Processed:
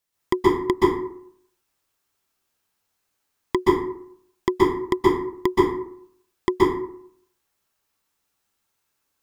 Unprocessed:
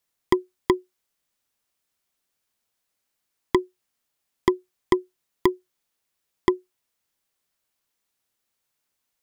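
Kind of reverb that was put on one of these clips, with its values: plate-style reverb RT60 0.65 s, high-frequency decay 0.5×, pre-delay 115 ms, DRR -7 dB; trim -2.5 dB

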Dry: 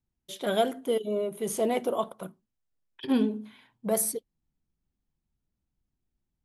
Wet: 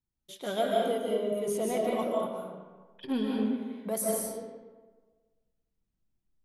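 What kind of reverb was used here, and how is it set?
algorithmic reverb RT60 1.4 s, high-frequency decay 0.6×, pre-delay 110 ms, DRR -3 dB; trim -6 dB

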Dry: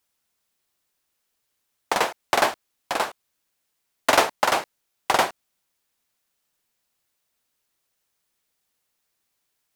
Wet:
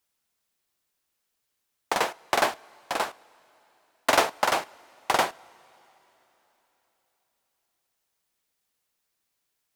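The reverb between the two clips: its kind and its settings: two-slope reverb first 0.28 s, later 3.9 s, from -18 dB, DRR 18.5 dB; trim -3 dB

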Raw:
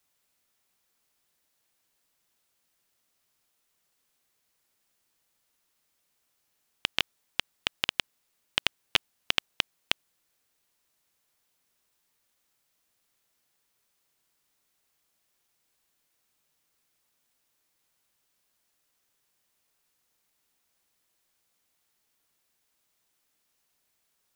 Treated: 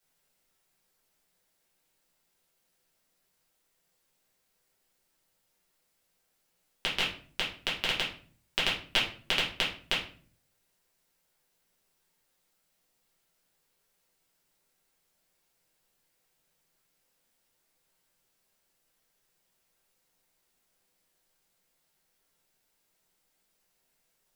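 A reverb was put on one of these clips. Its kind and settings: simulated room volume 41 m³, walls mixed, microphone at 1.3 m; trim -6.5 dB

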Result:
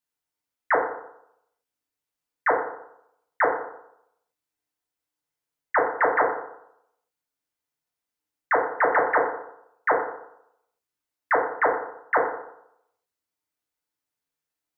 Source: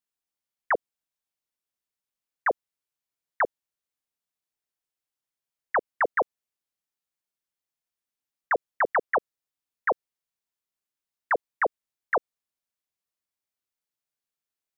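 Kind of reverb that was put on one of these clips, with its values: FDN reverb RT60 0.77 s, low-frequency decay 0.9×, high-frequency decay 0.35×, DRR -2 dB

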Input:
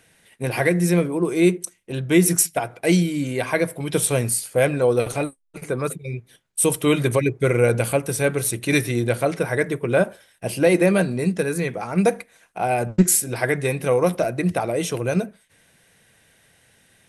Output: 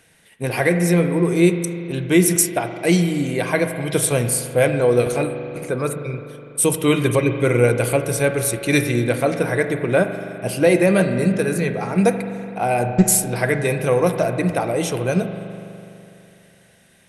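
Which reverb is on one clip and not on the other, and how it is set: spring tank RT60 2.9 s, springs 41 ms, chirp 35 ms, DRR 7.5 dB; trim +1.5 dB

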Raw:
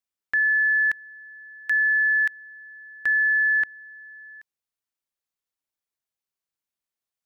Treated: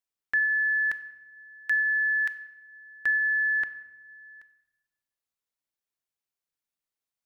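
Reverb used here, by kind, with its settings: simulated room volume 630 m³, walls mixed, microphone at 0.36 m; trim -2.5 dB

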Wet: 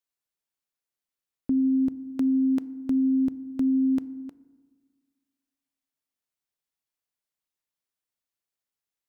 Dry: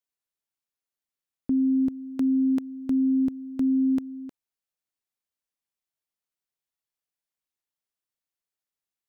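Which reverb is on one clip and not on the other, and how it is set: FDN reverb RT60 1.5 s, low-frequency decay 1.25×, high-frequency decay 0.35×, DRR 17 dB

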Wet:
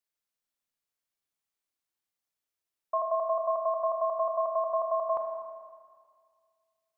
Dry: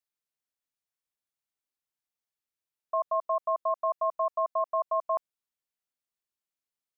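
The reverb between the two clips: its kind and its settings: Schroeder reverb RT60 1.9 s, combs from 27 ms, DRR 2 dB

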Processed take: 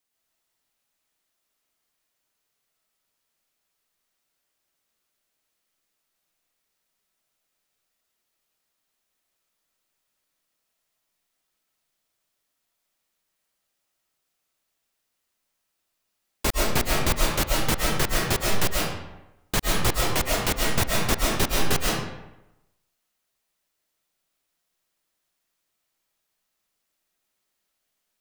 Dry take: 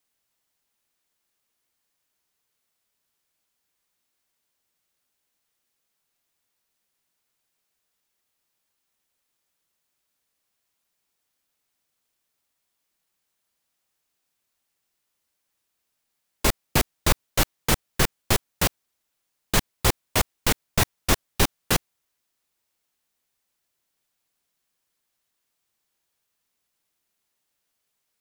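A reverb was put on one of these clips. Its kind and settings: algorithmic reverb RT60 0.94 s, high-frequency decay 0.7×, pre-delay 90 ms, DRR -3 dB; trim -3.5 dB

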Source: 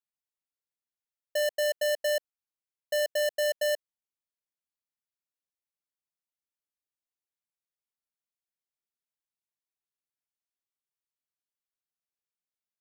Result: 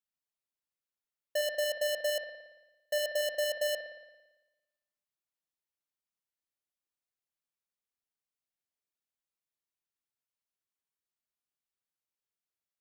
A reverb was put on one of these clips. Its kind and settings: spring tank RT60 1.1 s, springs 56 ms, chirp 20 ms, DRR 5 dB; trim -2.5 dB

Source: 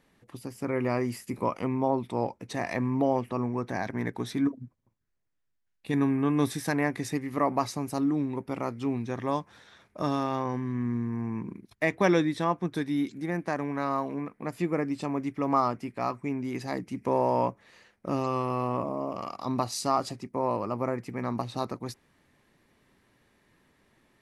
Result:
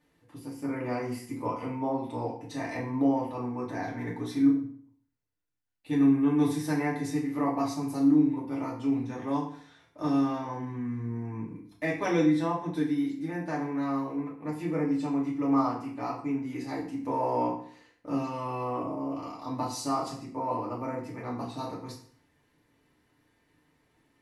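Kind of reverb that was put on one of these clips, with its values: FDN reverb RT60 0.54 s, low-frequency decay 1.1×, high-frequency decay 0.85×, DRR -5.5 dB; trim -10 dB

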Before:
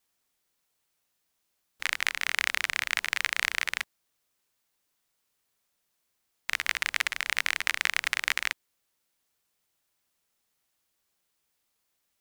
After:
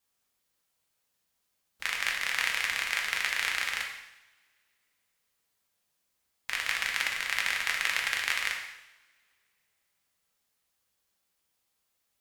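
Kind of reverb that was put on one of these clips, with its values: two-slope reverb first 0.85 s, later 2.7 s, from -27 dB, DRR -0.5 dB; trim -4 dB

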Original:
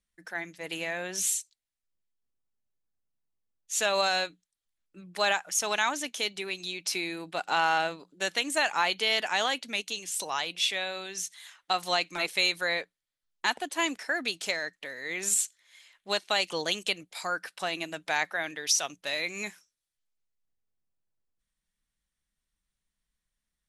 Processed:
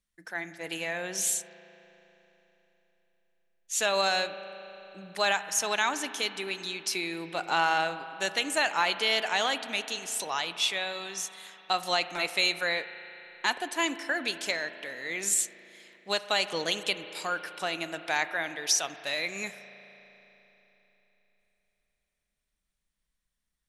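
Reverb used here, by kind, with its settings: spring tank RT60 3.7 s, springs 36 ms, chirp 60 ms, DRR 11.5 dB

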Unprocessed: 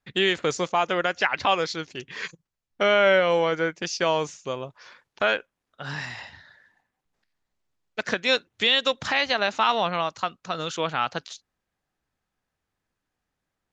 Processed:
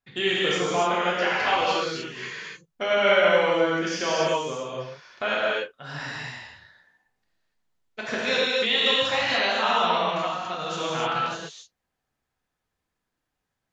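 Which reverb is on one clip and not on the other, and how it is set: gated-style reverb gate 320 ms flat, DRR -7 dB; trim -7 dB

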